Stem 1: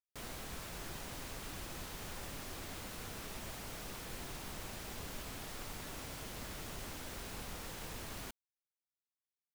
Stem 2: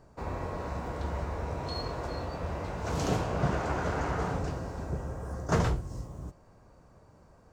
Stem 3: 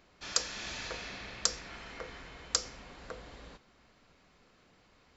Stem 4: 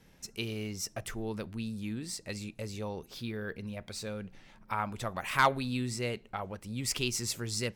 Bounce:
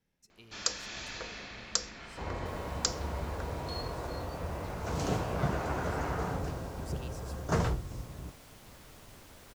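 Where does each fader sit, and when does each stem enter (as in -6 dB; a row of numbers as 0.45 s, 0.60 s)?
-8.5 dB, -2.5 dB, -1.0 dB, -20.0 dB; 2.30 s, 2.00 s, 0.30 s, 0.00 s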